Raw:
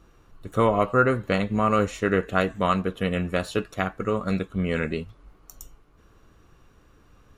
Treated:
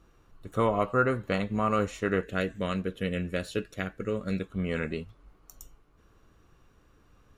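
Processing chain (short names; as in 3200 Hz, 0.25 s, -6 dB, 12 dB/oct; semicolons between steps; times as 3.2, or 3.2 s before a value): 2.23–4.42 band shelf 940 Hz -9.5 dB 1.1 oct; gain -5 dB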